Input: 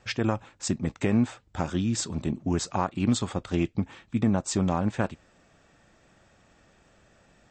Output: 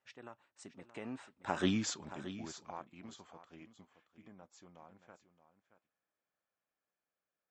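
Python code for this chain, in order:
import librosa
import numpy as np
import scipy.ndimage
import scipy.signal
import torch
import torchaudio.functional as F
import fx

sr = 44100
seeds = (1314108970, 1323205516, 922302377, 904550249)

p1 = fx.doppler_pass(x, sr, speed_mps=23, closest_m=1.7, pass_at_s=1.69)
p2 = fx.highpass(p1, sr, hz=920.0, slope=6)
p3 = fx.high_shelf(p2, sr, hz=3000.0, db=-10.5)
p4 = p3 + fx.echo_single(p3, sr, ms=624, db=-13.0, dry=0)
y = p4 * librosa.db_to_amplitude(9.0)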